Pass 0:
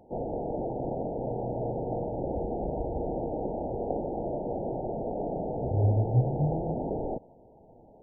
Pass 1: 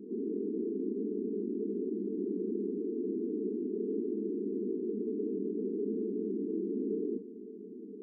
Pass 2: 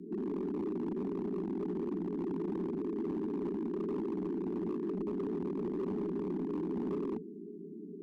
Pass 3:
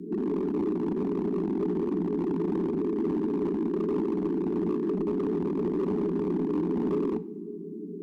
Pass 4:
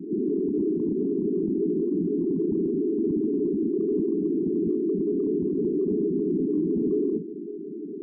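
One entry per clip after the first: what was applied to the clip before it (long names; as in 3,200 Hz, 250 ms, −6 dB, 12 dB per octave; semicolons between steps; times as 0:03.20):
brick-wall band-pass 190–460 Hz; envelope flattener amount 50%
gain into a clipping stage and back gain 31 dB; frequency shifter −24 Hz
convolution reverb, pre-delay 3 ms, DRR 12.5 dB; level +7.5 dB
spectral envelope exaggerated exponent 3; level +3 dB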